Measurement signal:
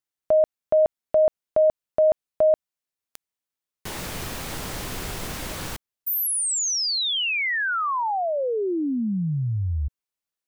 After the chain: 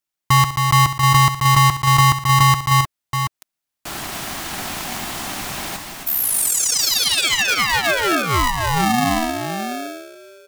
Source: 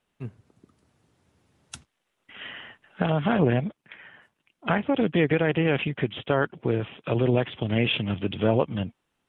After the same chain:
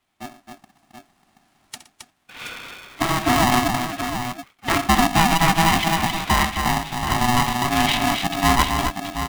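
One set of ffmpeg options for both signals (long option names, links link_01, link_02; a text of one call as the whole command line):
ffmpeg -i in.wav -af "highpass=frequency=140:width=0.5412,highpass=frequency=140:width=1.3066,aecho=1:1:3.6:0.61,aecho=1:1:67|118|268|728:0.237|0.126|0.531|0.398,aeval=exprs='val(0)*sgn(sin(2*PI*490*n/s))':channel_layout=same,volume=3dB" out.wav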